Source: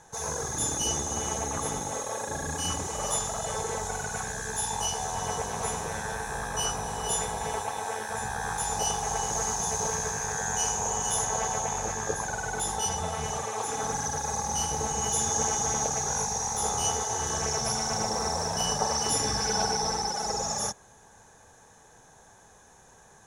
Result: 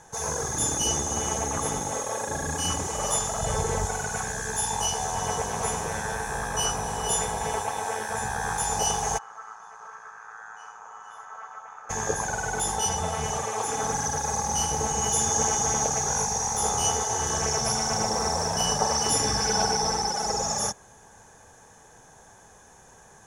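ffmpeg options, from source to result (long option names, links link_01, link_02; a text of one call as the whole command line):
ffmpeg -i in.wav -filter_complex "[0:a]asettb=1/sr,asplit=3[link_01][link_02][link_03];[link_01]atrim=end=3.404[link_04];[link_02]atrim=start=3.4:end=3.86,asetpts=PTS-STARTPTS,afade=type=in:duration=0.004:curve=qsin,afade=type=out:start_time=0.456:duration=0.004:curve=qsin,lowshelf=frequency=170:gain=11[link_05];[link_03]atrim=start=3.856[link_06];[link_04][link_05]acrossfade=duration=0.004:curve1=hsin:curve2=qsin[link_07];[link_07][link_06]acrossfade=duration=0.004:curve1=qsin:curve2=hsin,asplit=3[link_08][link_09][link_10];[link_08]afade=type=out:start_time=9.17:duration=0.02[link_11];[link_09]bandpass=frequency=1300:width_type=q:width=7.5,afade=type=in:start_time=9.17:duration=0.02,afade=type=out:start_time=11.89:duration=0.02[link_12];[link_10]afade=type=in:start_time=11.89:duration=0.02[link_13];[link_11][link_12][link_13]amix=inputs=3:normalize=0,bandreject=frequency=3900:width=9.5,volume=3dB" out.wav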